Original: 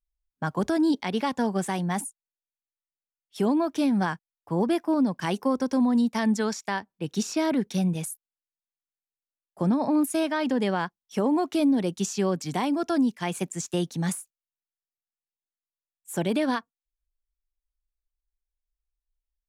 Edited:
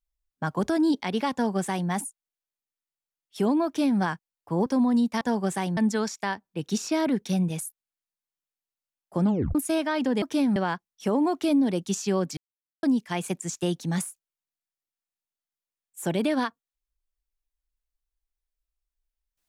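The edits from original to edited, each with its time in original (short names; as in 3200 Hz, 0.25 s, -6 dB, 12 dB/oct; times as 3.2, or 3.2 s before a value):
1.33–1.89 copy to 6.22
3.66–4 copy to 10.67
4.66–5.67 cut
9.69 tape stop 0.31 s
12.48–12.94 mute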